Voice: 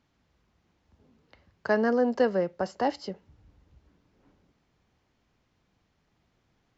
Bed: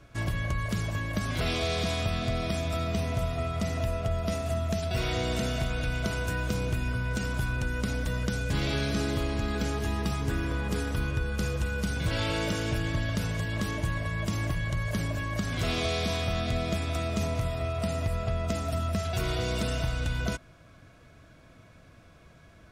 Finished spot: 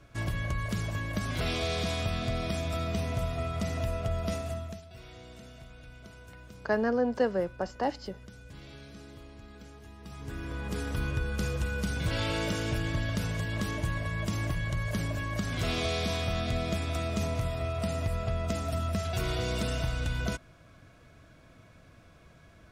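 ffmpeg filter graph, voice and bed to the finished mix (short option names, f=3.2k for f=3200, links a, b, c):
-filter_complex "[0:a]adelay=5000,volume=-3dB[a];[1:a]volume=16dB,afade=t=out:st=4.32:d=0.52:silence=0.133352,afade=t=in:st=10:d=1.07:silence=0.125893[b];[a][b]amix=inputs=2:normalize=0"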